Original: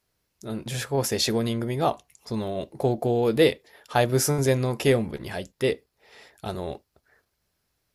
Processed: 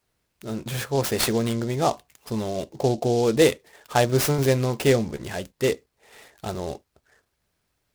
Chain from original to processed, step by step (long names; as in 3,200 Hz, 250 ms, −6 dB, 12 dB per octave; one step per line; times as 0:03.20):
short delay modulated by noise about 4,800 Hz, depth 0.035 ms
level +1.5 dB